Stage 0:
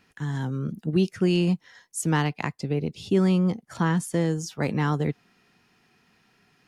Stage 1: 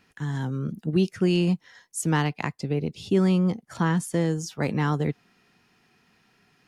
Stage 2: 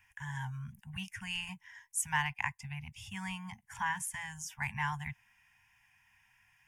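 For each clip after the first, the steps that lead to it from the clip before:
no processing that can be heard
inverse Chebyshev band-stop filter 280–560 Hz, stop band 50 dB; phaser with its sweep stopped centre 850 Hz, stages 8

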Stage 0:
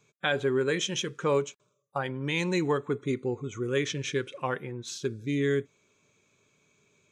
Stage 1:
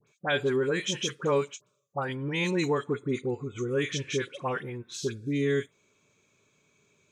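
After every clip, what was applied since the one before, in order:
all-pass dispersion highs, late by 72 ms, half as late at 1,700 Hz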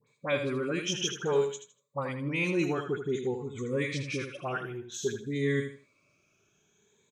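rippled gain that drifts along the octave scale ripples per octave 0.99, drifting +0.55 Hz, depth 12 dB
repeating echo 79 ms, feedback 25%, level −8 dB
level −4 dB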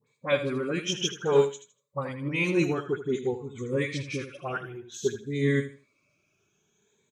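spectral magnitudes quantised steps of 15 dB
expander for the loud parts 1.5 to 1, over −38 dBFS
level +6.5 dB

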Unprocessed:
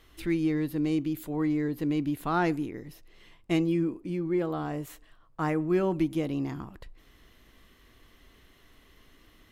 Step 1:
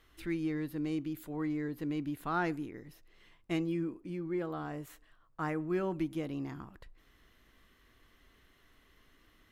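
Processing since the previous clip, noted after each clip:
parametric band 1,500 Hz +4.5 dB 0.88 octaves
level −7.5 dB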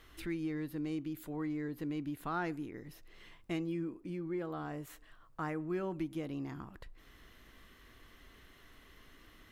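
downward compressor 1.5 to 1, threshold −57 dBFS, peak gain reduction 10.5 dB
level +6 dB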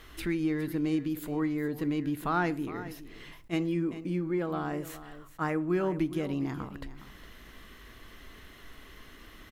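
single-tap delay 413 ms −14.5 dB
on a send at −17 dB: convolution reverb RT60 0.50 s, pre-delay 5 ms
on the sum: level that may rise only so fast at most 500 dB per second
level +8 dB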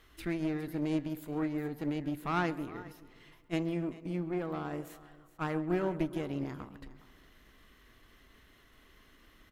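one-sided soft clipper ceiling −31.5 dBFS
feedback echo with a low-pass in the loop 135 ms, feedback 71%, low-pass 3,000 Hz, level −15.5 dB
expander for the loud parts 1.5 to 1, over −46 dBFS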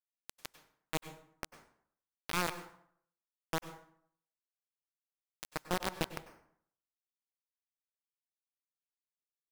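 bit reduction 4 bits
dense smooth reverb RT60 0.64 s, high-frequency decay 0.65×, pre-delay 85 ms, DRR 11.5 dB
level −3.5 dB

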